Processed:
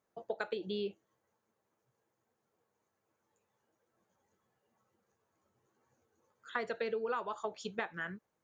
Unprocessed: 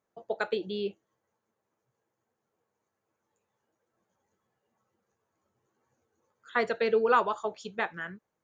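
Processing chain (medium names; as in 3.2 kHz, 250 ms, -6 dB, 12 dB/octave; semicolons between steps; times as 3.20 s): compression 8:1, threshold -33 dBFS, peak gain reduction 14.5 dB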